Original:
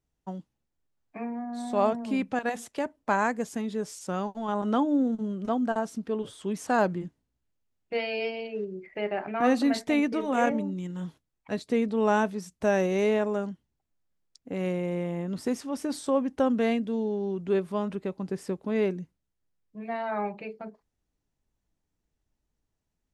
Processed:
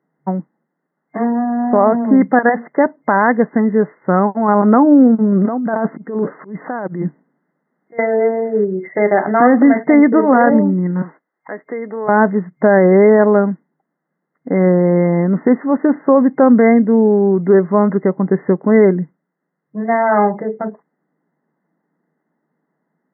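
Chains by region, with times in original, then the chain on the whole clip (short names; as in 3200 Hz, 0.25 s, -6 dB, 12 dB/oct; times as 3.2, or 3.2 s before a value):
5.32–7.99 negative-ratio compressor -34 dBFS + auto swell 0.271 s
11.02–12.09 HPF 390 Hz + high shelf 3200 Hz +11.5 dB + compressor 2.5:1, threshold -44 dBFS
whole clip: FFT band-pass 150–2100 Hz; maximiser +18.5 dB; gain -1 dB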